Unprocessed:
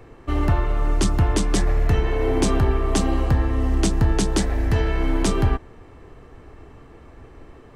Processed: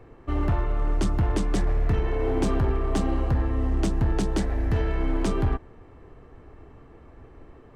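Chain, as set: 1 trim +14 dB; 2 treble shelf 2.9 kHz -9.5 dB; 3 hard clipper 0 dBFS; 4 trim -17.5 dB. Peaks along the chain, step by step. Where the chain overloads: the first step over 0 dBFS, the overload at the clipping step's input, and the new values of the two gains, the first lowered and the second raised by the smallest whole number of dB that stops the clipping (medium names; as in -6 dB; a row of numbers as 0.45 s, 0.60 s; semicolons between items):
+4.5 dBFS, +4.5 dBFS, 0.0 dBFS, -17.5 dBFS; step 1, 4.5 dB; step 1 +9 dB, step 4 -12.5 dB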